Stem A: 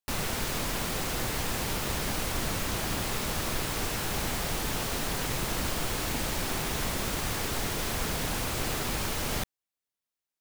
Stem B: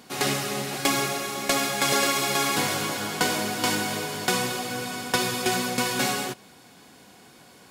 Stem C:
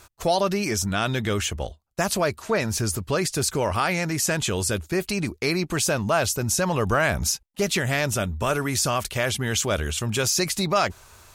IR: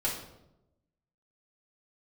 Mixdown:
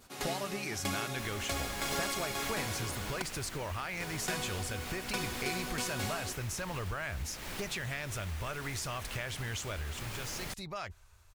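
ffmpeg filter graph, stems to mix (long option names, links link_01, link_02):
-filter_complex "[0:a]adelay=1100,volume=-9.5dB[link_01];[1:a]volume=-13dB,asplit=3[link_02][link_03][link_04];[link_02]atrim=end=3.22,asetpts=PTS-STARTPTS,afade=type=out:start_time=3.216:duration=0.004:curve=hsin[link_05];[link_03]atrim=start=3.22:end=4,asetpts=PTS-STARTPTS,volume=0[link_06];[link_04]atrim=start=4,asetpts=PTS-STARTPTS,afade=type=in:duration=0.004:curve=hsin[link_07];[link_05][link_06][link_07]concat=n=3:v=0:a=1[link_08];[2:a]asubboost=boost=5.5:cutoff=89,volume=-8dB,afade=type=out:start_time=9.62:duration=0.52:silence=0.316228[link_09];[link_01][link_09]amix=inputs=2:normalize=0,adynamicequalizer=threshold=0.00562:dfrequency=2100:dqfactor=0.9:tfrequency=2100:tqfactor=0.9:attack=5:release=100:ratio=0.375:range=3:mode=boostabove:tftype=bell,acompressor=threshold=-35dB:ratio=6,volume=0dB[link_10];[link_08][link_10]amix=inputs=2:normalize=0"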